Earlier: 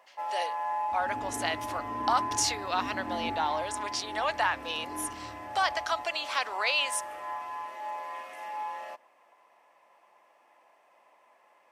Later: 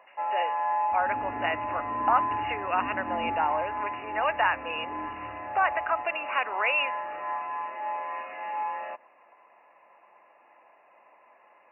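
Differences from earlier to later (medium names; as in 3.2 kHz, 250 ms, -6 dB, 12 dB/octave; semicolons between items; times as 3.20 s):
speech +3.0 dB; first sound +4.5 dB; master: add brick-wall FIR low-pass 2.9 kHz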